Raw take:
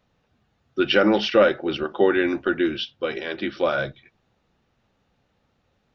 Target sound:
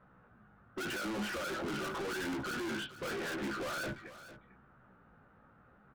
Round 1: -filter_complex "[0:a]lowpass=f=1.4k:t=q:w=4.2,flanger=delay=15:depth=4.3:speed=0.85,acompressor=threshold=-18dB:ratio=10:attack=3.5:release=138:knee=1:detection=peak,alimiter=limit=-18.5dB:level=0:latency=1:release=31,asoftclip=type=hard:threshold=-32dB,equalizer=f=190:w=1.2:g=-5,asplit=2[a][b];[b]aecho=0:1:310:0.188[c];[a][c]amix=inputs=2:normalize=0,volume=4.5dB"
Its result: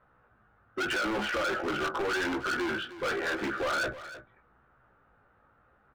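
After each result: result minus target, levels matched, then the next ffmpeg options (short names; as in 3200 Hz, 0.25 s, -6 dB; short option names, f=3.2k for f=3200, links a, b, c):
echo 0.139 s early; 250 Hz band -3.5 dB; hard clip: distortion -4 dB
-filter_complex "[0:a]lowpass=f=1.4k:t=q:w=4.2,flanger=delay=15:depth=4.3:speed=0.85,acompressor=threshold=-18dB:ratio=10:attack=3.5:release=138:knee=1:detection=peak,alimiter=limit=-18.5dB:level=0:latency=1:release=31,asoftclip=type=hard:threshold=-32dB,equalizer=f=190:w=1.2:g=-5,asplit=2[a][b];[b]aecho=0:1:449:0.188[c];[a][c]amix=inputs=2:normalize=0,volume=4.5dB"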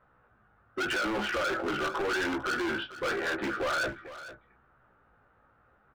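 250 Hz band -3.0 dB; hard clip: distortion -4 dB
-filter_complex "[0:a]lowpass=f=1.4k:t=q:w=4.2,flanger=delay=15:depth=4.3:speed=0.85,acompressor=threshold=-18dB:ratio=10:attack=3.5:release=138:knee=1:detection=peak,alimiter=limit=-18.5dB:level=0:latency=1:release=31,asoftclip=type=hard:threshold=-32dB,equalizer=f=190:w=1.2:g=5.5,asplit=2[a][b];[b]aecho=0:1:449:0.188[c];[a][c]amix=inputs=2:normalize=0,volume=4.5dB"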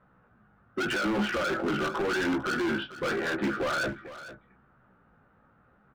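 hard clip: distortion -4 dB
-filter_complex "[0:a]lowpass=f=1.4k:t=q:w=4.2,flanger=delay=15:depth=4.3:speed=0.85,acompressor=threshold=-18dB:ratio=10:attack=3.5:release=138:knee=1:detection=peak,alimiter=limit=-18.5dB:level=0:latency=1:release=31,asoftclip=type=hard:threshold=-42.5dB,equalizer=f=190:w=1.2:g=5.5,asplit=2[a][b];[b]aecho=0:1:449:0.188[c];[a][c]amix=inputs=2:normalize=0,volume=4.5dB"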